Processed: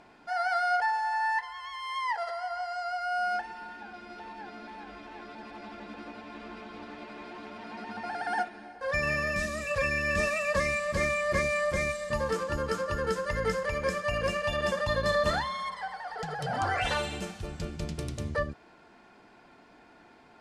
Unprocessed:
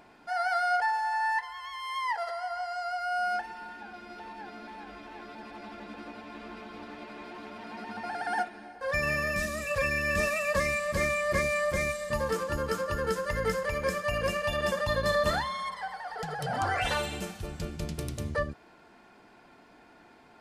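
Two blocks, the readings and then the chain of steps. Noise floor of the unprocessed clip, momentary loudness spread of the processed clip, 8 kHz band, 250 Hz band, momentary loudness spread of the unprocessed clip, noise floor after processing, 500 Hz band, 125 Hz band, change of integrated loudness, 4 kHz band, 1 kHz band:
−57 dBFS, 17 LU, −2.0 dB, 0.0 dB, 17 LU, −57 dBFS, 0.0 dB, 0.0 dB, 0.0 dB, 0.0 dB, 0.0 dB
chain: low-pass filter 8,800 Hz 12 dB per octave

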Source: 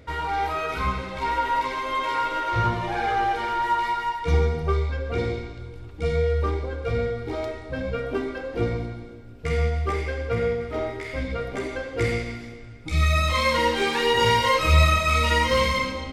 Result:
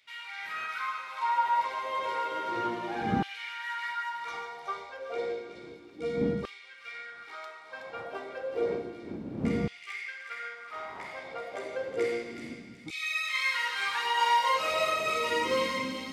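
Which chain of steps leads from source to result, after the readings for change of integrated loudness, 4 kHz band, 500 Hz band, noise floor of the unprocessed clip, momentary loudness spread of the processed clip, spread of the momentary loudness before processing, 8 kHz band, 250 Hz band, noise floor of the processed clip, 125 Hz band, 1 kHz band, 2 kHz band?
−7.5 dB, −7.0 dB, −8.0 dB, −41 dBFS, 15 LU, 12 LU, −8.0 dB, −5.0 dB, −49 dBFS, −18.5 dB, −6.5 dB, −5.5 dB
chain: wind on the microphone 93 Hz −20 dBFS
on a send: delay with a high-pass on its return 372 ms, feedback 31%, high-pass 1,900 Hz, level −6.5 dB
on the sum: auto-filter high-pass saw down 0.31 Hz 200–2,800 Hz
level −9 dB

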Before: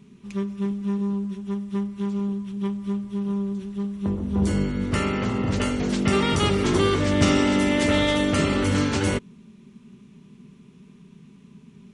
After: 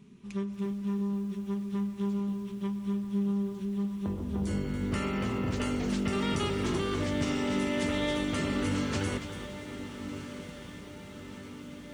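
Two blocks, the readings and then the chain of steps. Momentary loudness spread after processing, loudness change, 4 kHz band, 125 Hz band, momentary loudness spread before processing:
13 LU, −8.0 dB, −9.0 dB, −8.0 dB, 9 LU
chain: downward compressor, threshold −23 dBFS, peak gain reduction 9 dB
feedback delay with all-pass diffusion 1,375 ms, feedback 61%, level −12 dB
feedback echo at a low word length 284 ms, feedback 35%, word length 8 bits, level −10.5 dB
level −4.5 dB

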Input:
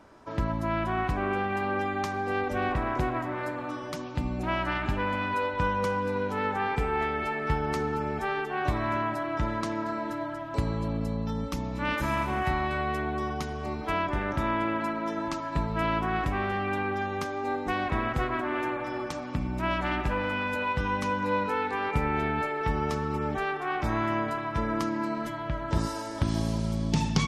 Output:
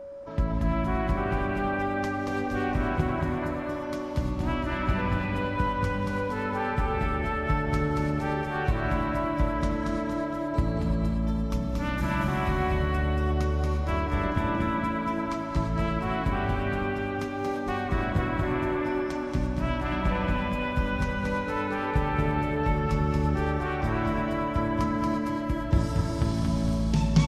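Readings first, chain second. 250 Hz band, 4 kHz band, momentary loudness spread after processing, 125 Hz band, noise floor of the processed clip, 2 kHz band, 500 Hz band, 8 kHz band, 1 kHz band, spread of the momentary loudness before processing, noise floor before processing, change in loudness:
+3.5 dB, −1.5 dB, 3 LU, +5.0 dB, −32 dBFS, −0.5 dB, +0.5 dB, −2.0 dB, −1.0 dB, 5 LU, −36 dBFS, +1.5 dB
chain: low-shelf EQ 220 Hz +9 dB
flanger 0.1 Hz, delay 4.1 ms, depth 6.4 ms, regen −78%
reverb whose tail is shaped and stops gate 370 ms rising, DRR 4 dB
steady tone 560 Hz −38 dBFS
on a send: repeating echo 231 ms, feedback 45%, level −3.5 dB

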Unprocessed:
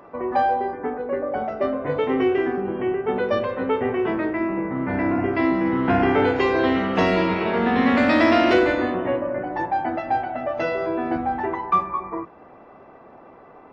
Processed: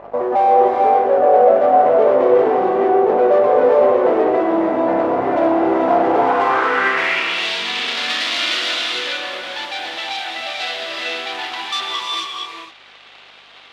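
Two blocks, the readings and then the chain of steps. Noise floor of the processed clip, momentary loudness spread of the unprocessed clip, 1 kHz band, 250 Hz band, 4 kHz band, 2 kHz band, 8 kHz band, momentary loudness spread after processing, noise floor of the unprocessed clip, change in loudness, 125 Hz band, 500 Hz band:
−44 dBFS, 9 LU, +7.0 dB, −1.5 dB, +14.5 dB, +5.0 dB, can't be measured, 11 LU, −47 dBFS, +5.5 dB, −9.5 dB, +7.5 dB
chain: leveller curve on the samples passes 5
reverb whose tail is shaped and stops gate 480 ms rising, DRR −1 dB
mains hum 50 Hz, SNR 21 dB
band-pass filter sweep 640 Hz → 3,600 Hz, 0:06.13–0:07.50

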